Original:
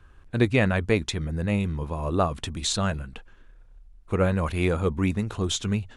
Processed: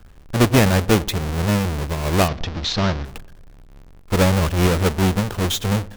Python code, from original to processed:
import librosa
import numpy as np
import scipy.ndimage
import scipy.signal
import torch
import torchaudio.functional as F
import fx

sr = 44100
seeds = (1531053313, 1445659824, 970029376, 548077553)

y = fx.halfwave_hold(x, sr)
y = fx.steep_lowpass(y, sr, hz=5700.0, slope=36, at=(2.28, 3.05))
y = fx.echo_filtered(y, sr, ms=96, feedback_pct=63, hz=1300.0, wet_db=-21.0)
y = y * librosa.db_to_amplitude(1.5)